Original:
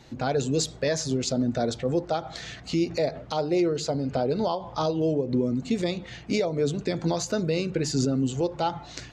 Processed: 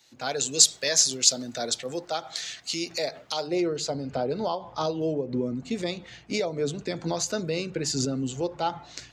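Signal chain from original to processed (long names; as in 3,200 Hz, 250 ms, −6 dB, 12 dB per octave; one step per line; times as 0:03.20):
spectral tilt +4 dB per octave, from 0:03.46 +1.5 dB per octave
multiband upward and downward expander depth 40%
level −1 dB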